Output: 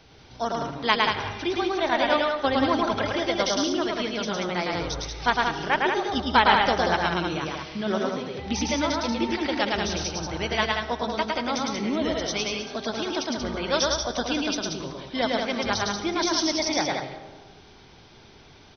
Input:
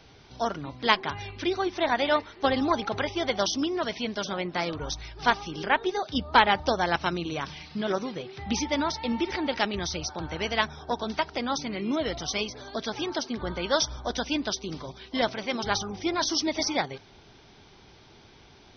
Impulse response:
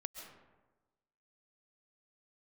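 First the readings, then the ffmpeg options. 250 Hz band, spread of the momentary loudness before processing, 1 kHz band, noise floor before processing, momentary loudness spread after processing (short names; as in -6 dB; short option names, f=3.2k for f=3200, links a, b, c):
+3.0 dB, 8 LU, +3.0 dB, -54 dBFS, 8 LU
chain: -filter_complex "[0:a]aecho=1:1:107.9|183.7:0.794|0.562,asplit=2[a][b];[1:a]atrim=start_sample=2205[c];[b][c]afir=irnorm=-1:irlink=0,volume=0dB[d];[a][d]amix=inputs=2:normalize=0,volume=-4.5dB"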